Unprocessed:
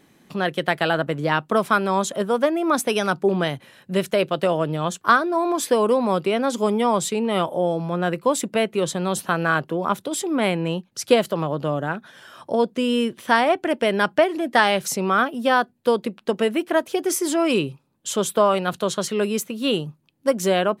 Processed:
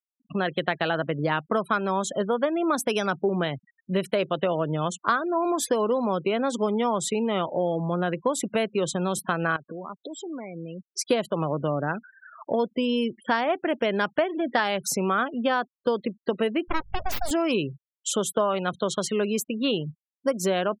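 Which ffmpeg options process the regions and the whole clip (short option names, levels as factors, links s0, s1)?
-filter_complex "[0:a]asettb=1/sr,asplit=3[s0][s1][s2];[s0]atrim=end=9.564[s3];[s1]atrim=start=9.56:end=10.93,asetpts=PTS-STARTPTS,afade=t=in:d=0.004:c=qsin,afade=t=out:st=1.366:d=0.004:c=qsin,lowpass=6100,acompressor=threshold=0.02:ratio=6:attack=3.2:release=140:knee=1:detection=peak[s4];[s2]atrim=start=10.926[s5];[s3][s4]acrossfade=d=0.004:c1=hsin:c2=qsin[s6];[s6][s5]acrossfade=d=0.004:c1=qsin:c2=hsin,asettb=1/sr,asplit=3[s7][s8][s9];[s7]atrim=end=16.684[s10];[s8]atrim=start=16.68:end=17.31,asetpts=PTS-STARTPTS,afade=t=in:d=0.004:c=qsin,afade=t=out:st=0.626:d=0.004:c=qsin,highpass=150,aeval=exprs='abs(val(0))':c=same,aeval=exprs='val(0)+0.00562*(sin(2*PI*50*n/s)+sin(2*PI*2*50*n/s)/2+sin(2*PI*3*50*n/s)/3+sin(2*PI*4*50*n/s)/4+sin(2*PI*5*50*n/s)/5)':c=same[s11];[s9]atrim=start=17.306[s12];[s10][s11]acrossfade=d=0.004:c1=hsin:c2=qsin[s13];[s13][s12]acrossfade=d=0.004:c1=qsin:c2=hsin,afftfilt=real='re*gte(hypot(re,im),0.0224)':imag='im*gte(hypot(re,im),0.0224)':win_size=1024:overlap=0.75,acompressor=threshold=0.0631:ratio=2.5,volume=1.12"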